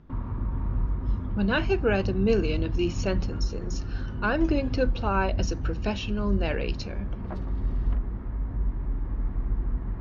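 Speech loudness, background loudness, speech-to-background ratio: -28.5 LUFS, -32.0 LUFS, 3.5 dB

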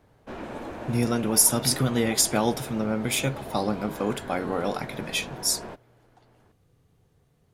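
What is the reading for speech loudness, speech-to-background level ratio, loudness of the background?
-25.0 LUFS, 13.5 dB, -38.5 LUFS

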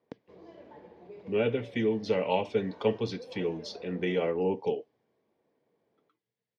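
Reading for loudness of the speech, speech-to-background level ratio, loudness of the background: -30.5 LUFS, 20.0 dB, -50.5 LUFS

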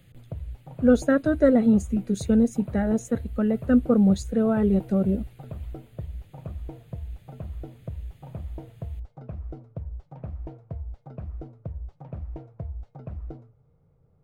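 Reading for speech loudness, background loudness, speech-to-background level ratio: -22.5 LUFS, -39.0 LUFS, 16.5 dB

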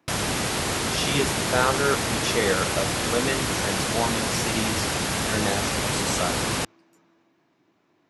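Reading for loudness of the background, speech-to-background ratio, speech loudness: -25.0 LUFS, -3.0 dB, -28.0 LUFS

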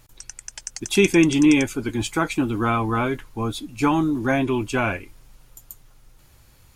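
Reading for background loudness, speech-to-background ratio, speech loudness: -35.0 LUFS, 13.5 dB, -21.5 LUFS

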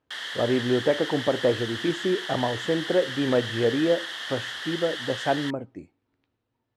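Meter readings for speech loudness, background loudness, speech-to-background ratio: -26.5 LUFS, -32.5 LUFS, 6.0 dB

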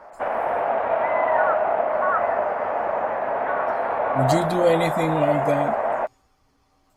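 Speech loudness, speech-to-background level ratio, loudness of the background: -24.0 LUFS, -1.0 dB, -23.0 LUFS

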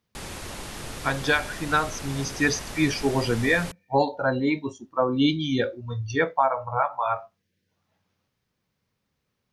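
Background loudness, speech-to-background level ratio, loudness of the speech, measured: -36.5 LUFS, 11.0 dB, -25.5 LUFS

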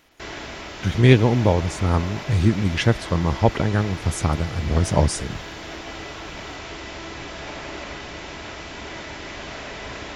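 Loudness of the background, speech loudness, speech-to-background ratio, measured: -34.0 LUFS, -21.0 LUFS, 13.0 dB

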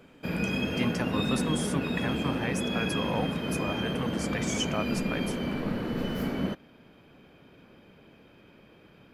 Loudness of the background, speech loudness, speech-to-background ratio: -30.5 LUFS, -35.0 LUFS, -4.5 dB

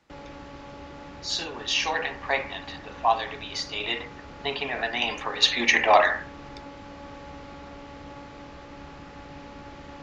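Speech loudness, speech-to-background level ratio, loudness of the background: -25.0 LUFS, 18.0 dB, -43.0 LUFS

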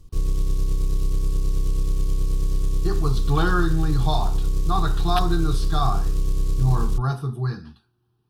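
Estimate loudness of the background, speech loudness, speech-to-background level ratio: -26.5 LUFS, -26.0 LUFS, 0.5 dB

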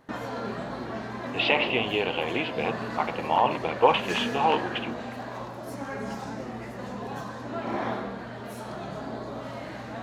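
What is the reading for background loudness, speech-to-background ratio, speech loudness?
-34.5 LUFS, 8.5 dB, -26.0 LUFS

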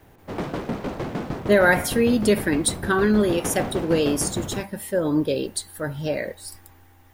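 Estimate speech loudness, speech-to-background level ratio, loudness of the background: -22.5 LUFS, 9.0 dB, -31.5 LUFS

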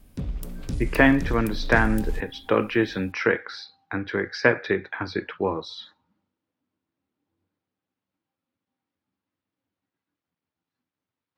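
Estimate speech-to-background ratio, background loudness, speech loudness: 9.0 dB, -33.5 LUFS, -24.5 LUFS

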